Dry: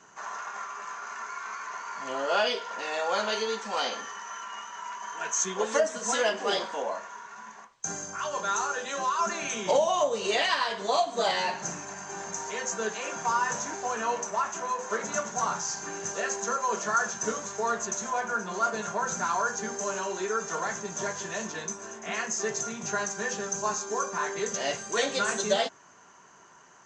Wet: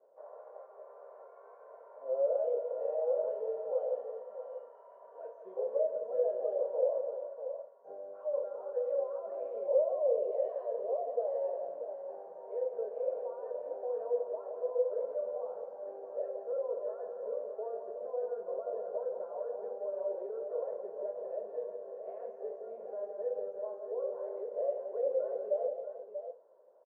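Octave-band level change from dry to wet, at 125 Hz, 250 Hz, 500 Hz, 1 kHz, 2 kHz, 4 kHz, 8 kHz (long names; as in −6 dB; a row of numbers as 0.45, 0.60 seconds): below −30 dB, below −15 dB, −1.0 dB, −18.5 dB, below −35 dB, below −40 dB, below −40 dB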